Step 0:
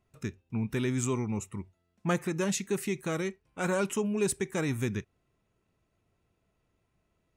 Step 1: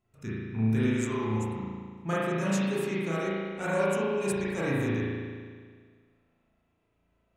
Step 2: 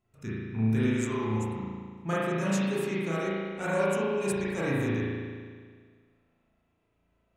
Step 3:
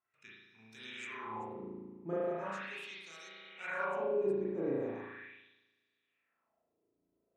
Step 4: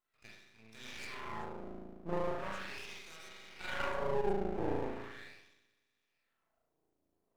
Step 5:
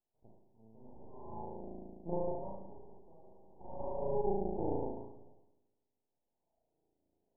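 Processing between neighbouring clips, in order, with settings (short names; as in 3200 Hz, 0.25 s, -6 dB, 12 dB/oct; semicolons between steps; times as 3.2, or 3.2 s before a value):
spring tank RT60 1.8 s, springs 36 ms, chirp 70 ms, DRR -8.5 dB; gain -6 dB
nothing audible
LFO band-pass sine 0.39 Hz 330–4800 Hz
half-wave rectifier; gain +3.5 dB
steep low-pass 940 Hz 96 dB/oct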